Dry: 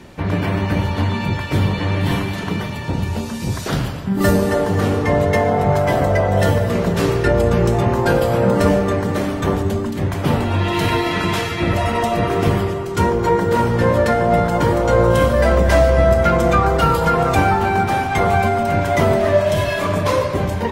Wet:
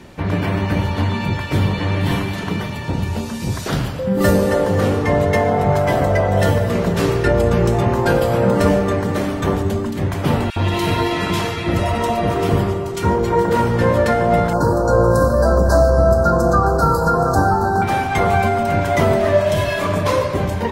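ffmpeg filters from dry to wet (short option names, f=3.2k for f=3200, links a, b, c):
-filter_complex "[0:a]asettb=1/sr,asplit=3[a][b][c];[a]atrim=end=3.994[d];[b]atrim=start=3.99:end=4.91,asetpts=PTS-STARTPTS,afade=t=in:d=0.004:c=qsin,afade=t=out:st=0.916:d=0.004:c=qsin,aeval=exprs='val(0)+0.1*sin(2*PI*520*n/s)':c=same[e];[c]atrim=start=4.906[f];[d][e]acrossfade=d=0.004:c1=hsin:c2=qsin[g];[g][f]acrossfade=d=0.004:c1=qsin:c2=hsin,asettb=1/sr,asplit=3[h][i][j];[h]atrim=end=10.504[k];[i]atrim=start=10.5:end=13.5,asetpts=PTS-STARTPTS,afade=t=in:d=0.004:c=qsin,afade=t=out:st=2.996:d=0.004:c=qsin,acrossover=split=1800[l][m];[l]adelay=60[n];[n][m]amix=inputs=2:normalize=0,atrim=end_sample=132300[o];[j]atrim=start=13.496[p];[k][o]acrossfade=d=0.004:c1=hsin:c2=qsin[q];[q][p]acrossfade=d=0.004:c1=qsin:c2=hsin,asettb=1/sr,asplit=3[r][s][t];[r]atrim=end=14.534[u];[s]atrim=start=14.53:end=17.82,asetpts=PTS-STARTPTS,afade=t=in:d=0.004:c=qsin,afade=t=out:st=3.286:d=0.004:c=qsin,asuperstop=centerf=2600:order=12:qfactor=0.99[v];[t]atrim=start=17.816[w];[u][v]acrossfade=d=0.004:c1=hsin:c2=qsin[x];[x][w]acrossfade=d=0.004:c1=qsin:c2=hsin"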